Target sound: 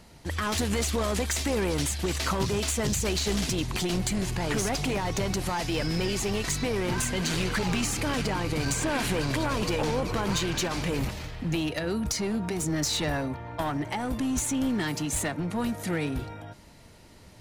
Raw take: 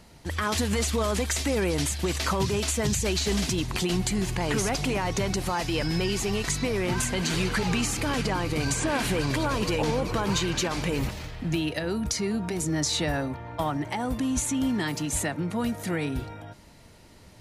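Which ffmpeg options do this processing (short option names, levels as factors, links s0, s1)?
-af "aeval=exprs='clip(val(0),-1,0.0501)':c=same"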